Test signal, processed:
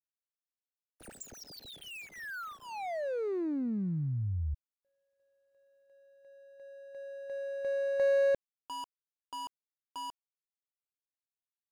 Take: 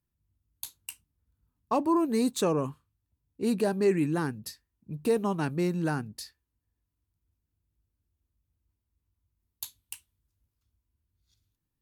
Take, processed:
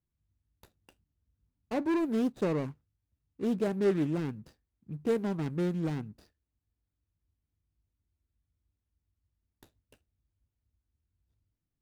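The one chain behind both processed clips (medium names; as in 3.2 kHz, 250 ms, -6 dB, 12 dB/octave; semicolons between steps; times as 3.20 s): median filter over 41 samples; loudspeaker Doppler distortion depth 0.19 ms; trim -2 dB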